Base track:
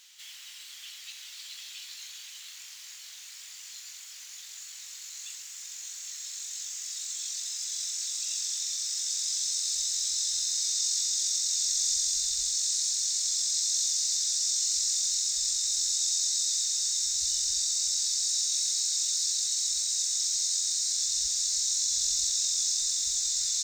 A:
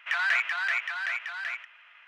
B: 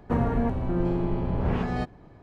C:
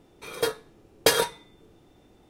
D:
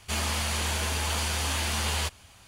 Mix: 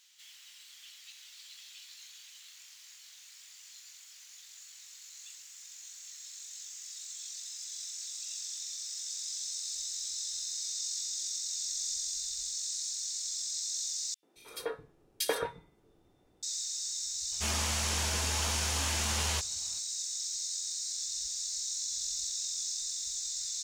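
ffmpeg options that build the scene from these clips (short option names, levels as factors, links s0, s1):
-filter_complex "[0:a]volume=0.398[s0];[3:a]acrossover=split=210|2700[s1][s2][s3];[s2]adelay=90[s4];[s1]adelay=220[s5];[s5][s4][s3]amix=inputs=3:normalize=0[s6];[s0]asplit=2[s7][s8];[s7]atrim=end=14.144[s9];[s6]atrim=end=2.29,asetpts=PTS-STARTPTS,volume=0.335[s10];[s8]atrim=start=16.426[s11];[4:a]atrim=end=2.47,asetpts=PTS-STARTPTS,volume=0.596,afade=t=in:d=0.004:c=hsin,afade=t=out:st=2.466:d=0.004:c=hsin,adelay=763812S[s12];[s9][s10]acrossfade=d=0.004:c1=hsin:c2=hsin[s13];[s13][s11]acrossfade=d=0.004:c1=hsin:c2=hsin[s14];[s14][s12]amix=inputs=2:normalize=0"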